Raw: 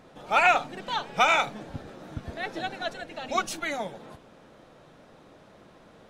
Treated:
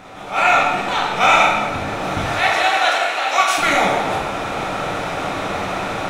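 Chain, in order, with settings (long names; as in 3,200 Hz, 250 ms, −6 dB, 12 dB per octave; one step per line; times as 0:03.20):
compressor on every frequency bin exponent 0.6
0:02.24–0:03.58: high-pass filter 690 Hz 12 dB per octave
automatic gain control gain up to 14 dB
convolution reverb RT60 1.3 s, pre-delay 5 ms, DRR −4 dB
level that may rise only so fast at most 160 dB per second
level −4 dB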